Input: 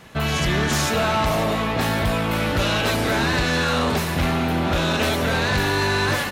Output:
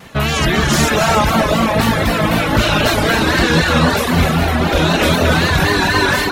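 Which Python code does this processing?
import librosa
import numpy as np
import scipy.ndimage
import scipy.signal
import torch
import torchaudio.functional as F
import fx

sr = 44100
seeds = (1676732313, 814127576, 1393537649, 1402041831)

y = fx.echo_alternate(x, sr, ms=207, hz=1900.0, feedback_pct=68, wet_db=-6.0)
y = fx.vibrato(y, sr, rate_hz=3.9, depth_cents=77.0)
y = fx.rev_gated(y, sr, seeds[0], gate_ms=320, shape='rising', drr_db=4.0)
y = fx.dereverb_blind(y, sr, rt60_s=1.0)
y = F.gain(torch.from_numpy(y), 7.0).numpy()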